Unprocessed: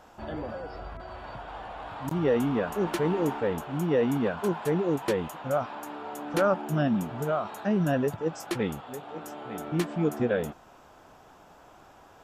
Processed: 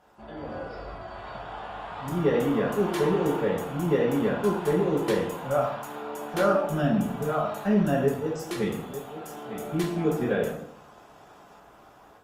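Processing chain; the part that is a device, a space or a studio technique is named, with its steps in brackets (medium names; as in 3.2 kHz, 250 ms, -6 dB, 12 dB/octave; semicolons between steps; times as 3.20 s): 8.31–9.95 s: peaking EQ 1.1 kHz -2.5 dB 2.6 oct; far-field microphone of a smart speaker (reverberation RT60 0.65 s, pre-delay 3 ms, DRR -2 dB; high-pass 82 Hz 6 dB/octave; level rider gain up to 6.5 dB; trim -8 dB; Opus 32 kbps 48 kHz)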